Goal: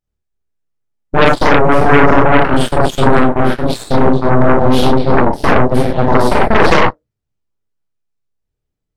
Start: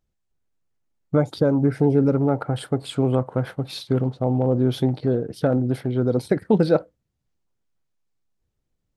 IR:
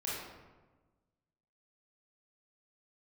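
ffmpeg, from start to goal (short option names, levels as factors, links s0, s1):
-filter_complex "[1:a]atrim=start_sample=2205,atrim=end_sample=6174[s0];[0:a][s0]afir=irnorm=-1:irlink=0,aeval=exprs='0.631*(cos(1*acos(clip(val(0)/0.631,-1,1)))-cos(1*PI/2))+0.0501*(cos(3*acos(clip(val(0)/0.631,-1,1)))-cos(3*PI/2))+0.02*(cos(5*acos(clip(val(0)/0.631,-1,1)))-cos(5*PI/2))+0.0562*(cos(7*acos(clip(val(0)/0.631,-1,1)))-cos(7*PI/2))+0.251*(cos(8*acos(clip(val(0)/0.631,-1,1)))-cos(8*PI/2))':c=same,apsyclip=2.66,volume=0.841"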